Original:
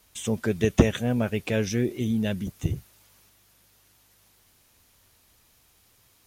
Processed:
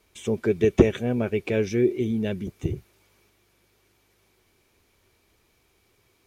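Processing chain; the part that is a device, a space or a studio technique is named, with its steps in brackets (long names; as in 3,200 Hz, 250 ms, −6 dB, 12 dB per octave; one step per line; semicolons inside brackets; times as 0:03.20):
inside a helmet (high-shelf EQ 5,600 Hz −9.5 dB; hollow resonant body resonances 380/2,300 Hz, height 11 dB, ringing for 30 ms)
level −2 dB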